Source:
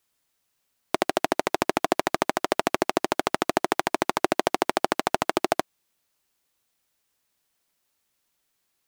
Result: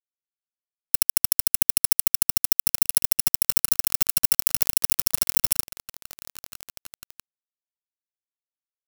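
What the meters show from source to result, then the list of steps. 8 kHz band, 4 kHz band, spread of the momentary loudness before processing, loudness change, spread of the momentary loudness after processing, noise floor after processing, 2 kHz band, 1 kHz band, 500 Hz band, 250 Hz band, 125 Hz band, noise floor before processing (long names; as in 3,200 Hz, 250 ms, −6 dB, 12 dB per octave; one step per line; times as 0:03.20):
+15.5 dB, +4.0 dB, 2 LU, +6.5 dB, 3 LU, below −85 dBFS, −9.5 dB, −18.5 dB, −23.0 dB, −15.5 dB, +1.0 dB, −76 dBFS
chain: samples in bit-reversed order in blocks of 128 samples
high-shelf EQ 2,700 Hz −3.5 dB
leveller curve on the samples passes 1
high-shelf EQ 9,400 Hz +8.5 dB
on a send: echo that builds up and dies away 166 ms, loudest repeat 8, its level −16.5 dB
on the sum: leveller curve on the samples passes 1
phaser with its sweep stopped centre 390 Hz, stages 8
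centre clipping without the shift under −11.5 dBFS
level −4 dB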